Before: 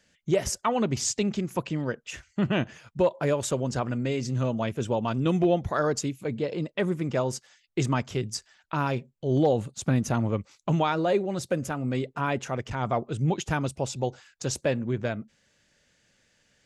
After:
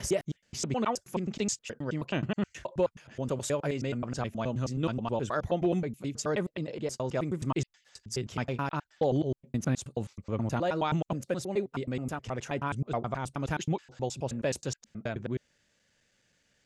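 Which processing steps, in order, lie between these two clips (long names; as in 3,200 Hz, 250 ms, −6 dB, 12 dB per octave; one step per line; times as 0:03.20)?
slices reordered back to front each 106 ms, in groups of 5
level −4.5 dB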